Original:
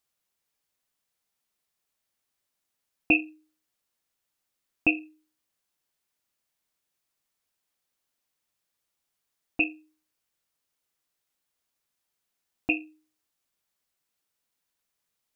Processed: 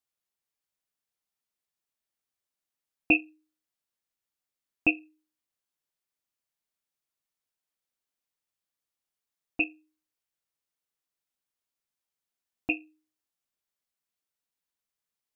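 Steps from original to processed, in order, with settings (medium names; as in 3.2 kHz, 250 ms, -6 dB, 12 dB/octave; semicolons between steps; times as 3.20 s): upward expansion 1.5:1, over -34 dBFS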